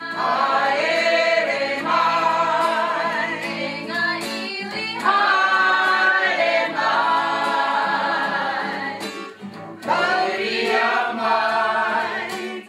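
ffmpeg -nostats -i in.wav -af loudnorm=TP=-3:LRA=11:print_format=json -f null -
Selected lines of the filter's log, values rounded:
"input_i" : "-19.8",
"input_tp" : "-5.4",
"input_lra" : "3.5",
"input_thresh" : "-30.0",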